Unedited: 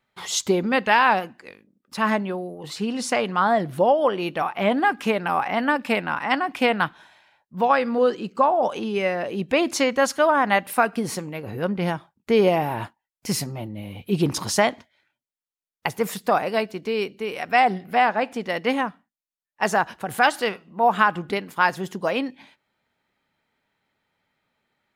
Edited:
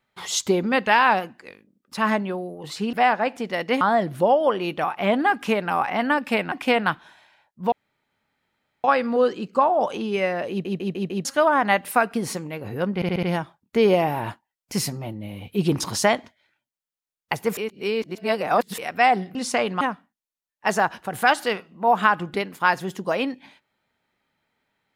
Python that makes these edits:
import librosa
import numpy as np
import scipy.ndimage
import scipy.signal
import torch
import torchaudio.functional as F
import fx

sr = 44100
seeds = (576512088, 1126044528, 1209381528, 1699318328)

y = fx.edit(x, sr, fx.swap(start_s=2.93, length_s=0.46, other_s=17.89, other_length_s=0.88),
    fx.cut(start_s=6.1, length_s=0.36),
    fx.insert_room_tone(at_s=7.66, length_s=1.12),
    fx.stutter_over(start_s=9.32, slice_s=0.15, count=5),
    fx.stutter(start_s=11.77, slice_s=0.07, count=5),
    fx.reverse_span(start_s=16.11, length_s=1.21), tone=tone)